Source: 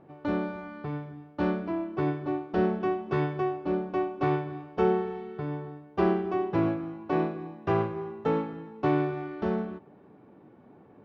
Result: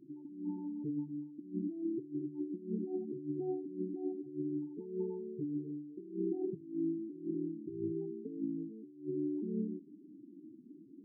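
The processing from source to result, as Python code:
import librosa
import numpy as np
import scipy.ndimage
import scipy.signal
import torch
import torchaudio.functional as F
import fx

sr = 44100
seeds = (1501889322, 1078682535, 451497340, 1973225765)

p1 = fx.formant_cascade(x, sr, vowel='u')
p2 = fx.low_shelf(p1, sr, hz=200.0, db=5.5)
p3 = fx.over_compress(p2, sr, threshold_db=-37.0, ratio=-0.5)
p4 = fx.spec_topn(p3, sr, count=8)
p5 = fx.hum_notches(p4, sr, base_hz=50, count=3)
y = p5 + fx.echo_single(p5, sr, ms=73, db=-23.5, dry=0)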